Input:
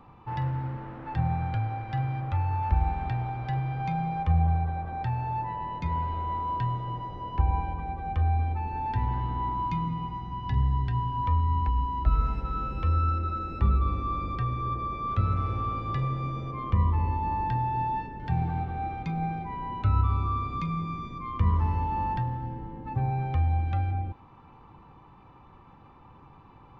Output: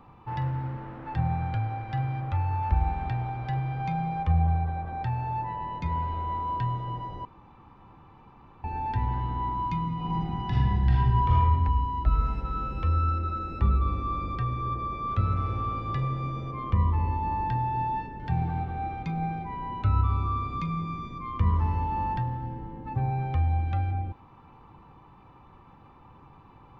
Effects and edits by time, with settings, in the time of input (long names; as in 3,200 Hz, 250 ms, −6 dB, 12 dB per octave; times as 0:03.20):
0:07.25–0:08.64: fill with room tone
0:09.95–0:11.36: thrown reverb, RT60 1.5 s, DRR −6.5 dB